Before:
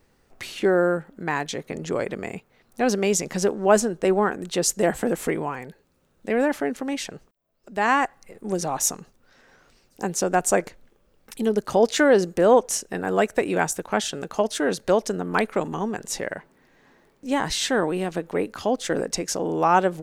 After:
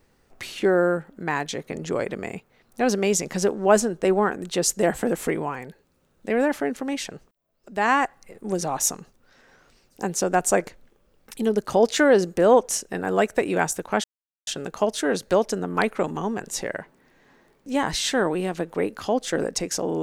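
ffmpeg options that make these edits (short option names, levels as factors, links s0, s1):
-filter_complex "[0:a]asplit=2[s0][s1];[s0]atrim=end=14.04,asetpts=PTS-STARTPTS,afade=t=out:st=14.036:d=0.004:c=hsin,apad=pad_dur=0.43[s2];[s1]atrim=start=14.04,asetpts=PTS-STARTPTS,afade=t=in:d=0.004:c=hsin[s3];[s2][s3]concat=n=2:v=0:a=1"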